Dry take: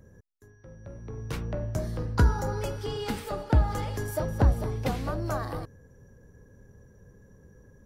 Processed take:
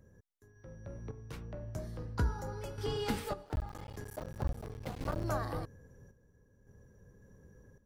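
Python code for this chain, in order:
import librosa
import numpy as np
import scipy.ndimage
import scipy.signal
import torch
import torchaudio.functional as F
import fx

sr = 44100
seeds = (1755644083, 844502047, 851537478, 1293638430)

y = fx.cycle_switch(x, sr, every=3, mode='muted', at=(3.45, 5.25))
y = fx.tremolo_random(y, sr, seeds[0], hz=1.8, depth_pct=75)
y = F.gain(torch.from_numpy(y), -2.5).numpy()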